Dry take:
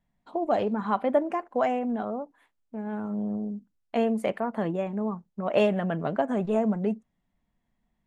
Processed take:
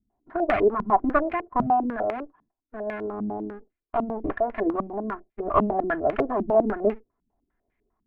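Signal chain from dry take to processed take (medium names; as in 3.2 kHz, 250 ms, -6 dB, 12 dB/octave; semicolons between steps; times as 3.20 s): comb filter that takes the minimum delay 2.9 ms; step-sequenced low-pass 10 Hz 220–2200 Hz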